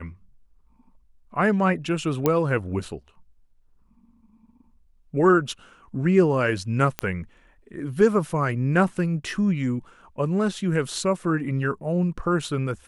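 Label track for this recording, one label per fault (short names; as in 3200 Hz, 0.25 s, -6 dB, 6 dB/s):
2.260000	2.260000	pop -7 dBFS
6.990000	6.990000	pop -10 dBFS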